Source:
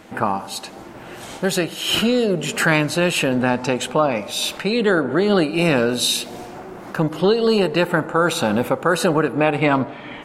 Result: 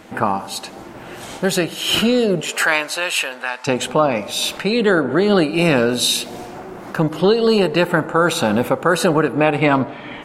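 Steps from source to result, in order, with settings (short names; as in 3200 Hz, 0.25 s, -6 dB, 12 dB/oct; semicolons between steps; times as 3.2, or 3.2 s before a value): 2.4–3.66 HPF 460 Hz -> 1400 Hz 12 dB/oct; gain +2 dB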